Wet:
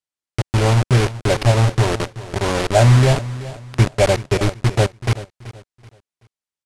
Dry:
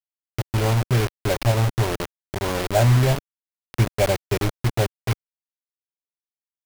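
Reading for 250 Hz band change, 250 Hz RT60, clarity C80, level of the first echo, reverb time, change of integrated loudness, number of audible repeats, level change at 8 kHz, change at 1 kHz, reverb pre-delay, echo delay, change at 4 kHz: +5.0 dB, no reverb, no reverb, -16.0 dB, no reverb, +5.0 dB, 2, +4.5 dB, +5.0 dB, no reverb, 380 ms, +5.0 dB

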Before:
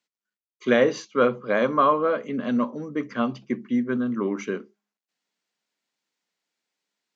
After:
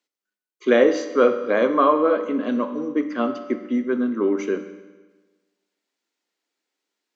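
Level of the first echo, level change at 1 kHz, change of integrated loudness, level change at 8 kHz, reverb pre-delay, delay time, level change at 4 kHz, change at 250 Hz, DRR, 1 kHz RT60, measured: no echo, +1.5 dB, +3.0 dB, no reading, 10 ms, no echo, +0.5 dB, +3.0 dB, 8.0 dB, 1.3 s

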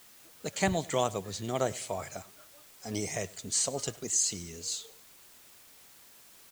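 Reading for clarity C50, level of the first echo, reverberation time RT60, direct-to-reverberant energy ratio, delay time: no reverb, -22.0 dB, no reverb, no reverb, 101 ms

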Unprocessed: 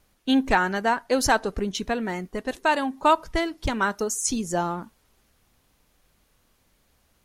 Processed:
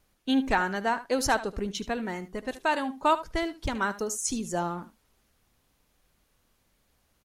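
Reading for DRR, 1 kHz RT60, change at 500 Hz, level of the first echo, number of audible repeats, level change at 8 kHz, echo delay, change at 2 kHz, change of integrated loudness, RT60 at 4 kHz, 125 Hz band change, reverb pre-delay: no reverb, no reverb, -4.5 dB, -15.0 dB, 1, -4.5 dB, 75 ms, -4.5 dB, -4.5 dB, no reverb, -4.0 dB, no reverb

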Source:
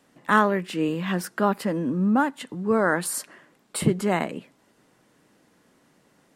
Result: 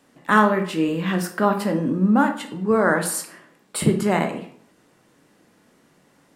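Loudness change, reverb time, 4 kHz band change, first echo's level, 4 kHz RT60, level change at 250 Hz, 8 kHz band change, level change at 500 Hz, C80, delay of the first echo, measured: +3.5 dB, 0.60 s, +3.0 dB, no echo, 0.40 s, +4.0 dB, +3.0 dB, +3.5 dB, 14.0 dB, no echo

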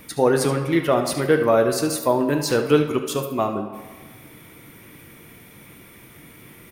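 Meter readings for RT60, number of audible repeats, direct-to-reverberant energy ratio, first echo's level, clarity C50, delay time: 1.4 s, 1, 5.0 dB, -12.0 dB, 7.0 dB, 73 ms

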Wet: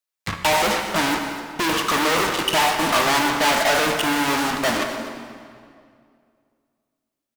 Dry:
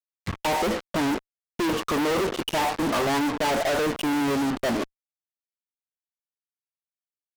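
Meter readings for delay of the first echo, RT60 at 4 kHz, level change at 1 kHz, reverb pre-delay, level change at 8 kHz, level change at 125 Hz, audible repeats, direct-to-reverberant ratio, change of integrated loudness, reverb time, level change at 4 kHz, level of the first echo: 249 ms, 1.7 s, +7.0 dB, 5 ms, +9.5 dB, +1.5 dB, 1, 3.5 dB, +5.5 dB, 2.2 s, +9.5 dB, -14.5 dB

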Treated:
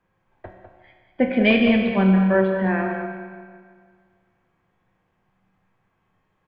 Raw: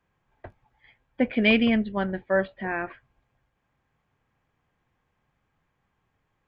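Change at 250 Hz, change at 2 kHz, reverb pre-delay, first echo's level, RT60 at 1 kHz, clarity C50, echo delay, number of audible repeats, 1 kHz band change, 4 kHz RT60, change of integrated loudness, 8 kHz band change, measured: +6.5 dB, +3.0 dB, 5 ms, -9.0 dB, 1.9 s, 3.0 dB, 201 ms, 1, +6.0 dB, 1.7 s, +5.0 dB, no reading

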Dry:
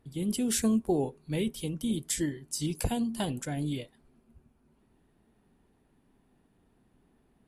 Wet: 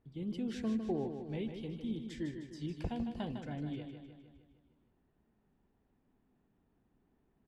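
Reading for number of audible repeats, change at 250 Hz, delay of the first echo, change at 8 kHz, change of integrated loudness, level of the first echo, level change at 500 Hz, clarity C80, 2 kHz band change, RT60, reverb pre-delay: 6, -7.5 dB, 154 ms, under -25 dB, -8.5 dB, -7.5 dB, -7.5 dB, no reverb, -9.5 dB, no reverb, no reverb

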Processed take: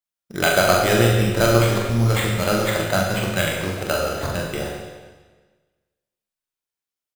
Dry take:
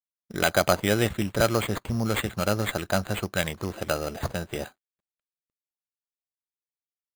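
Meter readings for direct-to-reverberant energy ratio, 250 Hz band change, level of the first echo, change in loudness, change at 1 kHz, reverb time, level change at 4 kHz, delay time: -2.0 dB, +5.5 dB, -4.0 dB, +7.0 dB, +7.0 dB, 1.4 s, +6.5 dB, 43 ms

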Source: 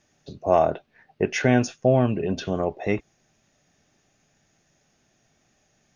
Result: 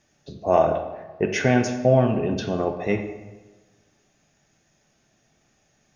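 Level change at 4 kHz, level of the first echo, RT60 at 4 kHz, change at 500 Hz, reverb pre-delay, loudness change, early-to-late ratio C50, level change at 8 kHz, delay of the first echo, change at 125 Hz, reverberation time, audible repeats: +1.0 dB, no echo, 0.80 s, +1.5 dB, 8 ms, +1.0 dB, 7.5 dB, no reading, no echo, +1.0 dB, 1.2 s, no echo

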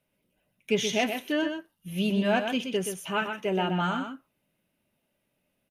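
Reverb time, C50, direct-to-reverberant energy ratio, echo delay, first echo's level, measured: no reverb, no reverb, no reverb, 125 ms, -7.0 dB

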